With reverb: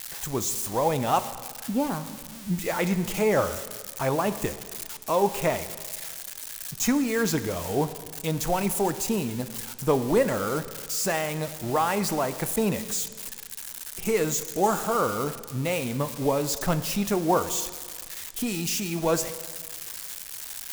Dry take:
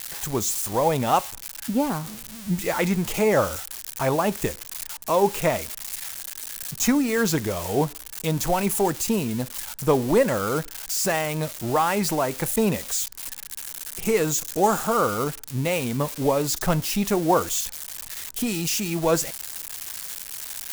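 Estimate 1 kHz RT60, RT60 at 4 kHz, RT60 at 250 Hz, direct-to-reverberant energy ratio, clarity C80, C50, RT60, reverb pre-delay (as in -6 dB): 1.8 s, 1.7 s, 1.8 s, 11.5 dB, 14.0 dB, 13.0 dB, 1.8 s, 5 ms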